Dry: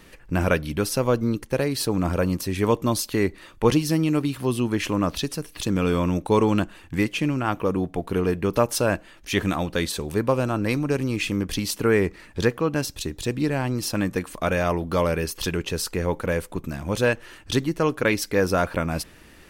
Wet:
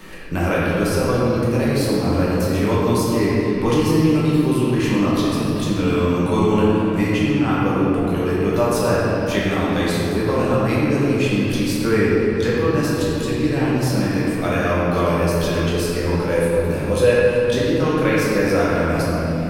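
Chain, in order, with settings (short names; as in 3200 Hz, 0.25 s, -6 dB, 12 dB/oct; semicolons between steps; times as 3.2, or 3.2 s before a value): 16.35–17.51 thirty-one-band EQ 500 Hz +10 dB, 2500 Hz +3 dB, 4000 Hz +4 dB, 10000 Hz +10 dB; shoebox room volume 140 m³, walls hard, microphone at 1.1 m; three-band squash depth 40%; gain -5 dB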